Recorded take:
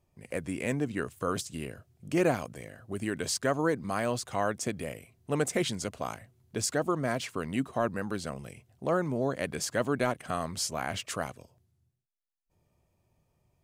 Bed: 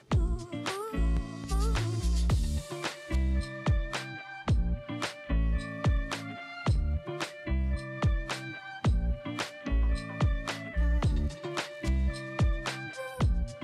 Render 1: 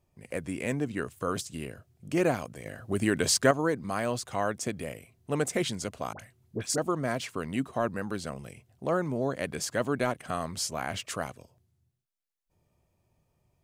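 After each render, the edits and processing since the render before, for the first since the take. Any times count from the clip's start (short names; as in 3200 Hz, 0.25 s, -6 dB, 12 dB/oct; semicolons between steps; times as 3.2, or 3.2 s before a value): 2.66–3.51 gain +6.5 dB; 6.13–6.78 dispersion highs, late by 63 ms, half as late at 1100 Hz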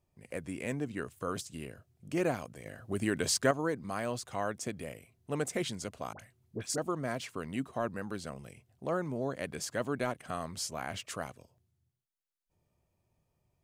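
gain -5 dB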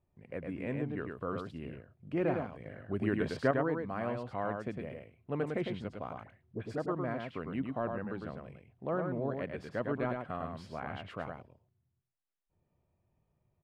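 air absorption 460 m; echo 0.105 s -4.5 dB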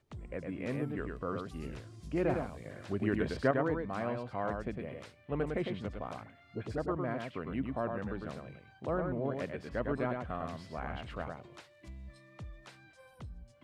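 add bed -19.5 dB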